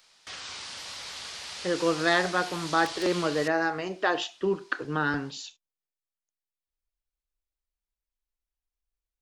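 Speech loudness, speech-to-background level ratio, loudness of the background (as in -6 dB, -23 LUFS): -28.0 LUFS, 9.0 dB, -37.0 LUFS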